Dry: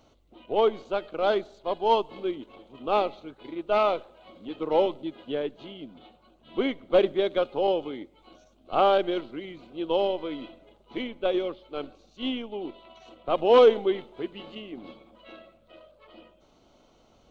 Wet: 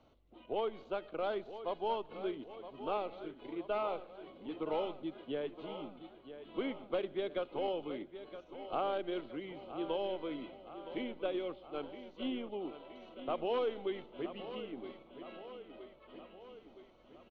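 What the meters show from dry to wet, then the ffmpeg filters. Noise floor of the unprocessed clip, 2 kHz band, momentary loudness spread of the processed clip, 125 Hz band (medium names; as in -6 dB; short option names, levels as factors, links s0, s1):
-61 dBFS, -11.0 dB, 15 LU, -8.5 dB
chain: -filter_complex "[0:a]lowpass=3400,acrossover=split=120|1400[s0][s1][s2];[s0]acompressor=threshold=0.00501:ratio=4[s3];[s1]acompressor=threshold=0.0398:ratio=4[s4];[s2]acompressor=threshold=0.00891:ratio=4[s5];[s3][s4][s5]amix=inputs=3:normalize=0,aecho=1:1:968|1936|2904|3872|4840|5808|6776:0.251|0.151|0.0904|0.0543|0.0326|0.0195|0.0117,volume=0.501"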